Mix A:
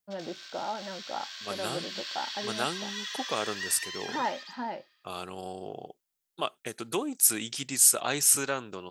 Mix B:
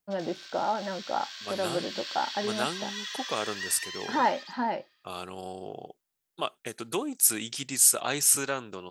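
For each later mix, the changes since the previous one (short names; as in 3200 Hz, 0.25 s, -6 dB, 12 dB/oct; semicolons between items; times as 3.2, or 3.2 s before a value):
first voice +6.0 dB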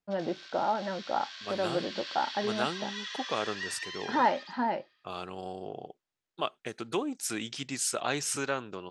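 master: add air absorption 100 m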